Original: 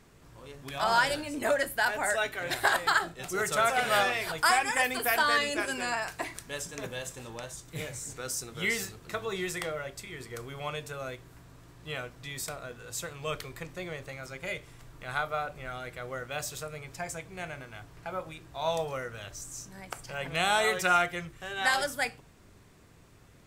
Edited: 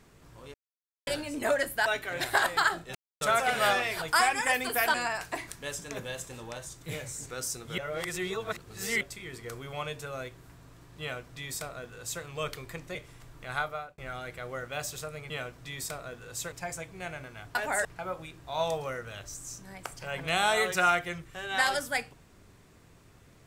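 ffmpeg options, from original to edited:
-filter_complex "[0:a]asplit=15[s0][s1][s2][s3][s4][s5][s6][s7][s8][s9][s10][s11][s12][s13][s14];[s0]atrim=end=0.54,asetpts=PTS-STARTPTS,afade=t=out:st=0.536:d=0.004:c=hsin[s15];[s1]atrim=start=0.54:end=1.07,asetpts=PTS-STARTPTS,volume=0[s16];[s2]atrim=start=1.07:end=1.862,asetpts=PTS-STARTPTS,afade=t=in:d=0.004:c=hsin[s17];[s3]atrim=start=2.158:end=3.25,asetpts=PTS-STARTPTS,afade=t=out:st=1.088:d=0.004:c=hsin[s18];[s4]atrim=start=3.25:end=3.51,asetpts=PTS-STARTPTS,volume=0[s19];[s5]atrim=start=3.51:end=5.242,asetpts=PTS-STARTPTS,afade=t=in:d=0.004:c=hsin[s20];[s6]atrim=start=5.808:end=8.652[s21];[s7]atrim=start=8.648:end=9.882,asetpts=PTS-STARTPTS,areverse[s22];[s8]atrim=start=9.878:end=13.822[s23];[s9]atrim=start=14.538:end=15.57,asetpts=PTS-STARTPTS,afade=t=out:st=0.662:d=0.37[s24];[s10]atrim=start=15.57:end=16.892,asetpts=PTS-STARTPTS,afade=t=in:d=0.004:c=hsin[s25];[s11]atrim=start=11.878:end=13.102[s26];[s12]atrim=start=16.888:end=17.922[s27];[s13]atrim=start=1.858:end=2.162[s28];[s14]atrim=start=17.918[s29];[s15][s16][s17]concat=n=3:v=0:a=1[s30];[s18][s19][s20]concat=n=3:v=0:a=1[s31];[s30][s31]acrossfade=d=0.004:c1=hsin:c2=hsin[s32];[s32][s21]acrossfade=d=0.004:c1=hsin:c2=hsin[s33];[s33][s22]acrossfade=d=0.004:c1=hsin:c2=hsin[s34];[s34][s23]acrossfade=d=0.004:c1=hsin:c2=hsin[s35];[s24][s25]concat=n=2:v=0:a=1[s36];[s35][s36]acrossfade=d=0.004:c1=hsin:c2=hsin[s37];[s37][s26]acrossfade=d=0.004:c1=hsin:c2=hsin[s38];[s38][s27]acrossfade=d=0.004:c1=hsin:c2=hsin[s39];[s39][s28]acrossfade=d=0.004:c1=hsin:c2=hsin[s40];[s40][s29]acrossfade=d=0.004:c1=hsin:c2=hsin"

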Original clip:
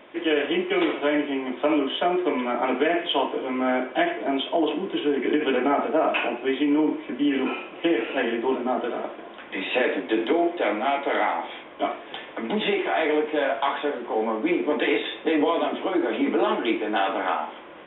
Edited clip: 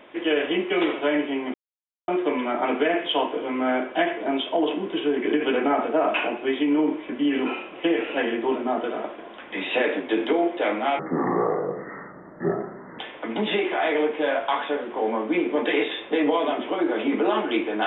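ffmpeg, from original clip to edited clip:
-filter_complex "[0:a]asplit=5[s0][s1][s2][s3][s4];[s0]atrim=end=1.54,asetpts=PTS-STARTPTS,afade=t=out:st=1.536:d=0.004:c=hsin[s5];[s1]atrim=start=1.54:end=2.08,asetpts=PTS-STARTPTS,volume=0[s6];[s2]atrim=start=2.08:end=10.994,asetpts=PTS-STARTPTS,afade=t=in:d=0.004:c=hsin[s7];[s3]atrim=start=10.99:end=12.13,asetpts=PTS-STARTPTS,asetrate=25137,aresample=44100,atrim=end_sample=88200,asetpts=PTS-STARTPTS[s8];[s4]atrim=start=12.126[s9];[s5][s6][s7]concat=n=3:v=0:a=1[s10];[s10][s8]acrossfade=d=0.004:c1=hsin:c2=hsin[s11];[s11][s9]acrossfade=d=0.004:c1=hsin:c2=hsin"

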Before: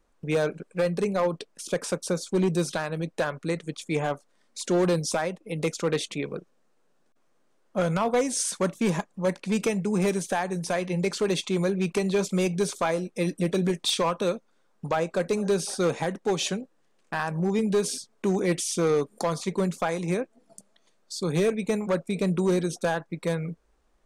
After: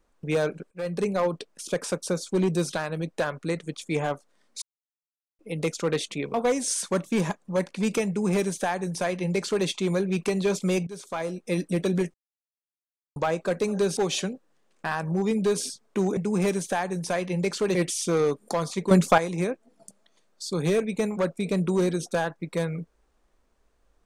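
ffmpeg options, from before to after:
-filter_complex "[0:a]asplit=13[s0][s1][s2][s3][s4][s5][s6][s7][s8][s9][s10][s11][s12];[s0]atrim=end=0.71,asetpts=PTS-STARTPTS,afade=t=out:st=0.706:d=0.004:c=hsin:silence=0.0944061[s13];[s1]atrim=start=0.71:end=4.62,asetpts=PTS-STARTPTS,afade=t=in:d=0.3:silence=0.0944061,afade=t=out:st=3.906:d=0.004:c=hsin[s14];[s2]atrim=start=4.62:end=5.39,asetpts=PTS-STARTPTS,volume=0[s15];[s3]atrim=start=5.39:end=6.342,asetpts=PTS-STARTPTS,afade=t=in:d=0.004:c=hsin[s16];[s4]atrim=start=8.028:end=12.56,asetpts=PTS-STARTPTS,afade=t=out:st=4.528:d=0.004:c=hsin:silence=0.125893[s17];[s5]atrim=start=12.56:end=13.83,asetpts=PTS-STARTPTS,afade=t=in:d=0.65:silence=0.125893,afade=t=out:st=1.266:d=0.004:c=hsin[s18];[s6]atrim=start=13.83:end=14.85,asetpts=PTS-STARTPTS,volume=0[s19];[s7]atrim=start=14.85:end=15.662,asetpts=PTS-STARTPTS,afade=t=in:d=0.004:c=hsin[s20];[s8]atrim=start=16.248:end=18.452[s21];[s9]atrim=start=9.768:end=11.352[s22];[s10]atrim=start=18.448:end=19.612[s23];[s11]atrim=start=19.608:end=19.882,asetpts=PTS-STARTPTS,volume=2.82[s24];[s12]atrim=start=19.878[s25];[s13][s14][s15][s16]concat=n=4:v=0:a=1[s26];[s17][s18][s19][s20]concat=n=4:v=0:a=1[s27];[s26][s27]acrossfade=d=0.004:c1=hsin:c2=hsin[s28];[s28][s21]acrossfade=d=0.004:c1=hsin:c2=hsin[s29];[s29][s22]acrossfade=d=0.004:c1=hsin:c2=hsin[s30];[s30][s23]acrossfade=d=0.004:c1=hsin:c2=hsin[s31];[s31][s24]acrossfade=d=0.004:c1=hsin:c2=hsin[s32];[s32][s25]acrossfade=d=0.004:c1=hsin:c2=hsin"

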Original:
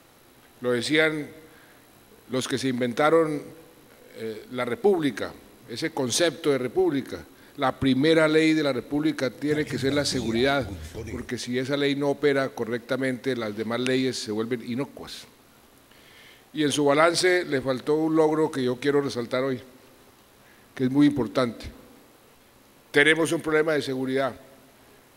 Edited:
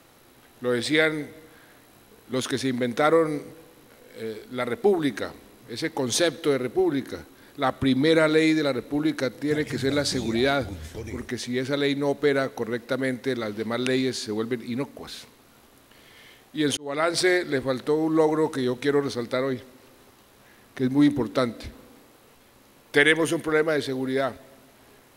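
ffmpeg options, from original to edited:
-filter_complex "[0:a]asplit=2[s0][s1];[s0]atrim=end=16.77,asetpts=PTS-STARTPTS,afade=t=out:st=16.766:d=0.004:c=hsin[s2];[s1]atrim=start=16.77,asetpts=PTS-STARTPTS,afade=t=in:d=0.46[s3];[s2][s3]concat=n=2:v=0:a=1"

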